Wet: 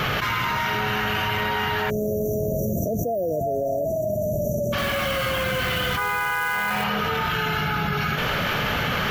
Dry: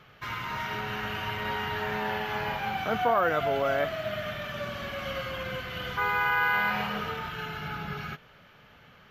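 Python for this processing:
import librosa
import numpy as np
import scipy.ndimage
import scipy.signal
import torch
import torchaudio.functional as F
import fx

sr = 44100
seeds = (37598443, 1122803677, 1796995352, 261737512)

y = fx.spec_erase(x, sr, start_s=1.9, length_s=2.83, low_hz=700.0, high_hz=5700.0)
y = fx.quant_float(y, sr, bits=2, at=(4.78, 6.84))
y = fx.high_shelf(y, sr, hz=7500.0, db=5.5)
y = fx.env_flatten(y, sr, amount_pct=100)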